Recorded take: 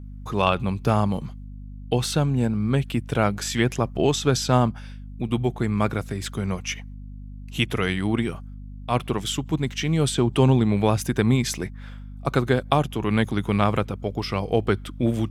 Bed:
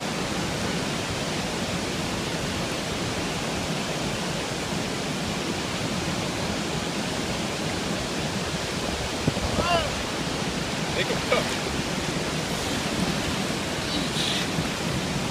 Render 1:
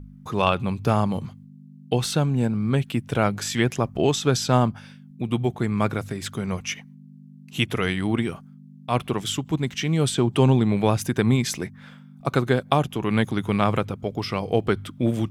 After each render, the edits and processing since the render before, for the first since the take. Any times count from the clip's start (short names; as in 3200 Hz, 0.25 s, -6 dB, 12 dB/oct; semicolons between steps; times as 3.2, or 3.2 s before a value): de-hum 50 Hz, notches 2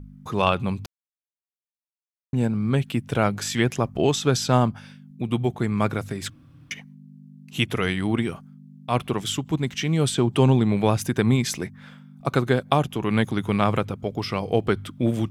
0.86–2.33 mute; 6.3–6.71 room tone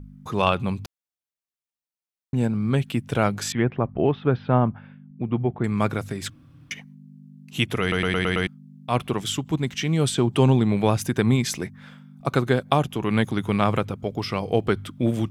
3.52–5.64 Gaussian blur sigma 3.8 samples; 7.81 stutter in place 0.11 s, 6 plays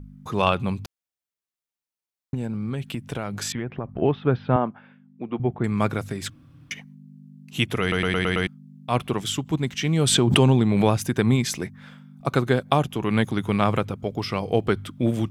2.34–4.02 compressor 12:1, threshold -24 dBFS; 4.56–5.4 BPF 280–6400 Hz; 9.84–10.89 backwards sustainer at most 28 dB/s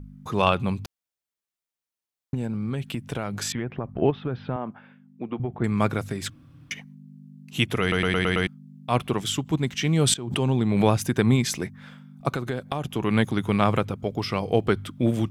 4.1–5.62 compressor, threshold -24 dBFS; 10.14–10.89 fade in, from -21 dB; 12.33–12.85 compressor 4:1, threshold -25 dBFS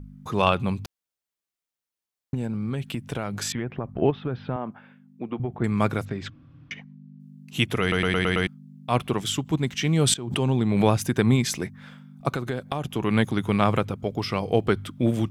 6.05–7.2 air absorption 190 m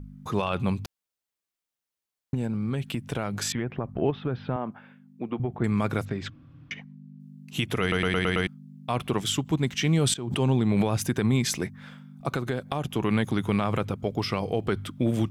limiter -14.5 dBFS, peak gain reduction 11 dB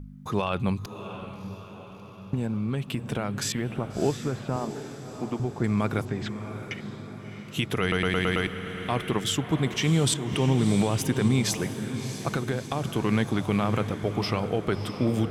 diffused feedback echo 0.659 s, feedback 56%, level -10 dB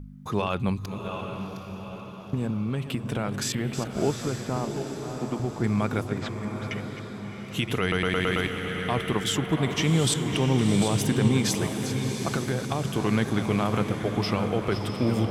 reverse delay 0.403 s, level -10 dB; diffused feedback echo 0.833 s, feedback 40%, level -9 dB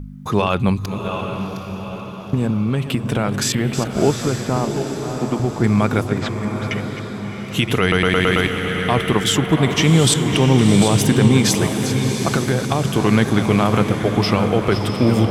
gain +9 dB; limiter -2 dBFS, peak gain reduction 1.5 dB